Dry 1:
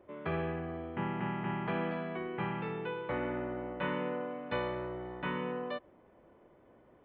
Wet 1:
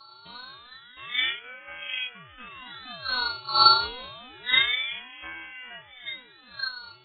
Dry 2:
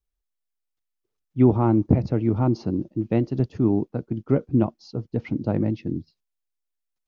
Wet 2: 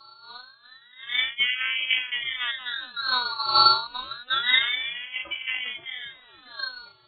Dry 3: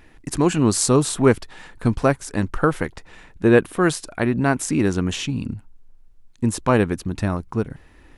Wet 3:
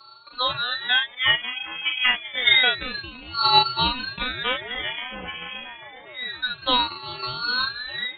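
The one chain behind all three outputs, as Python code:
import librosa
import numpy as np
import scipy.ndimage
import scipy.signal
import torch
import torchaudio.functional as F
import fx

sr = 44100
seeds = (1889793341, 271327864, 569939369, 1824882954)

p1 = fx.reverse_delay(x, sr, ms=230, wet_db=-11)
p2 = fx.dmg_wind(p1, sr, seeds[0], corner_hz=240.0, level_db=-25.0)
p3 = fx.noise_reduce_blind(p2, sr, reduce_db=10)
p4 = fx.peak_eq(p3, sr, hz=70.0, db=-11.0, octaves=2.2)
p5 = fx.robotise(p4, sr, hz=249.0)
p6 = fx.doubler(p5, sr, ms=38.0, db=-3.5)
p7 = p6 + fx.echo_wet_highpass(p6, sr, ms=402, feedback_pct=77, hz=1400.0, wet_db=-9.5, dry=0)
p8 = fx.freq_invert(p7, sr, carrier_hz=2900)
p9 = fx.ring_lfo(p8, sr, carrier_hz=940.0, swing_pct=65, hz=0.28)
y = p9 * librosa.db_to_amplitude(1.5)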